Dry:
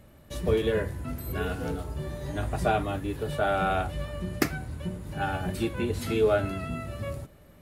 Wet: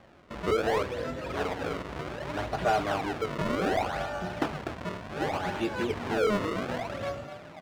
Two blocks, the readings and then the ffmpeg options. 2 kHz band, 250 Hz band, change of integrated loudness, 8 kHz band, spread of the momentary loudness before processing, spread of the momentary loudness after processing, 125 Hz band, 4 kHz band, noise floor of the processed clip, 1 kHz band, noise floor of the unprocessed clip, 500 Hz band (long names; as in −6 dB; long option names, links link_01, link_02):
+0.5 dB, −1.0 dB, −1.0 dB, −3.5 dB, 11 LU, 10 LU, −6.5 dB, +1.0 dB, −47 dBFS, +1.0 dB, −54 dBFS, −1.0 dB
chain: -filter_complex "[0:a]asplit=2[link_01][link_02];[link_02]asplit=5[link_03][link_04][link_05][link_06][link_07];[link_03]adelay=246,afreqshift=34,volume=-11.5dB[link_08];[link_04]adelay=492,afreqshift=68,volume=-17.3dB[link_09];[link_05]adelay=738,afreqshift=102,volume=-23.2dB[link_10];[link_06]adelay=984,afreqshift=136,volume=-29dB[link_11];[link_07]adelay=1230,afreqshift=170,volume=-34.9dB[link_12];[link_08][link_09][link_10][link_11][link_12]amix=inputs=5:normalize=0[link_13];[link_01][link_13]amix=inputs=2:normalize=0,acrusher=samples=31:mix=1:aa=0.000001:lfo=1:lforange=49.6:lforate=0.66,highshelf=frequency=8000:gain=-10,asplit=2[link_14][link_15];[link_15]highpass=frequency=720:poles=1,volume=19dB,asoftclip=type=tanh:threshold=-7.5dB[link_16];[link_14][link_16]amix=inputs=2:normalize=0,lowpass=frequency=2200:poles=1,volume=-6dB,volume=-6.5dB"